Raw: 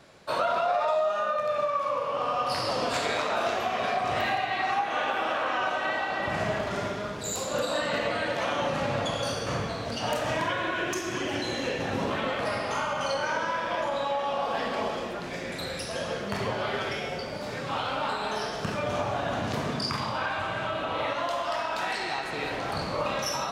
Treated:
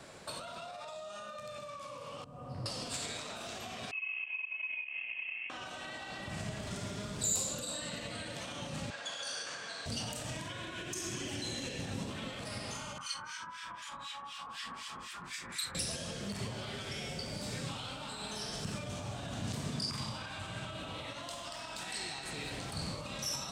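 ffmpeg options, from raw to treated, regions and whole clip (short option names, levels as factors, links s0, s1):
-filter_complex "[0:a]asettb=1/sr,asplit=3[s0][s1][s2];[s0]atrim=end=2.244[s3];[s1]atrim=start=2.24:end=2.66,asetpts=PTS-STARTPTS,afade=t=in:d=0.004:c=qsin,afade=t=out:st=0.416:d=0.004:c=qsin,acrusher=bits=5:mix=0:aa=0.5,bandpass=f=110:t=q:w=0.92[s4];[s2]atrim=start=2.656[s5];[s3][s4]acrossfade=d=0.004:c1=hsin:c2=qsin[s6];[s6][s5]acrossfade=d=0.004:c1=qsin:c2=hsin,asettb=1/sr,asplit=3[s7][s8][s9];[s7]atrim=end=3.914[s10];[s8]atrim=start=3.91:end=5.5,asetpts=PTS-STARTPTS,afade=t=in:d=0.004:c=qsin,afade=t=out:st=1.586:d=0.004:c=qsin,asplit=3[s11][s12][s13];[s11]bandpass=f=730:t=q:w=8,volume=1[s14];[s12]bandpass=f=1090:t=q:w=8,volume=0.501[s15];[s13]bandpass=f=2440:t=q:w=8,volume=0.355[s16];[s14][s15][s16]amix=inputs=3:normalize=0,adynamicsmooth=sensitivity=2:basefreq=600,lowpass=f=2800:t=q:w=0.5098,lowpass=f=2800:t=q:w=0.6013,lowpass=f=2800:t=q:w=0.9,lowpass=f=2800:t=q:w=2.563,afreqshift=-3300[s17];[s9]atrim=start=5.496[s18];[s10][s17]acrossfade=d=0.004:c1=hsin:c2=qsin[s19];[s19][s18]acrossfade=d=0.004:c1=qsin:c2=hsin,asettb=1/sr,asplit=3[s20][s21][s22];[s20]atrim=end=8.904[s23];[s21]atrim=start=8.9:end=9.86,asetpts=PTS-STARTPTS,afade=t=in:d=0.004:c=qsin,afade=t=out:st=0.956:d=0.004:c=qsin,highpass=610,lowpass=7000,equalizer=f=1600:w=7.3:g=13.5[s24];[s22]atrim=start=9.856[s25];[s23][s24]acrossfade=d=0.004:c1=hsin:c2=qsin[s26];[s26][s25]acrossfade=d=0.004:c1=qsin:c2=hsin,asettb=1/sr,asplit=3[s27][s28][s29];[s27]atrim=end=12.984[s30];[s28]atrim=start=12.98:end=15.75,asetpts=PTS-STARTPTS,afade=t=in:d=0.004:c=qsin,afade=t=out:st=2.766:d=0.004:c=qsin,lowshelf=f=800:t=q:w=3:g=-10,acrossover=split=1500[s31][s32];[s31]aeval=exprs='val(0)*(1-1/2+1/2*cos(2*PI*4*n/s))':c=same[s33];[s32]aeval=exprs='val(0)*(1-1/2-1/2*cos(2*PI*4*n/s))':c=same[s34];[s33][s34]amix=inputs=2:normalize=0[s35];[s29]atrim=start=15.746[s36];[s30][s35]acrossfade=d=0.004:c1=hsin:c2=qsin[s37];[s37][s36]acrossfade=d=0.004:c1=qsin:c2=hsin,alimiter=level_in=1.26:limit=0.0631:level=0:latency=1:release=228,volume=0.794,equalizer=f=8300:t=o:w=0.39:g=10.5,acrossover=split=240|3000[s38][s39][s40];[s39]acompressor=threshold=0.00398:ratio=6[s41];[s38][s41][s40]amix=inputs=3:normalize=0,volume=1.26"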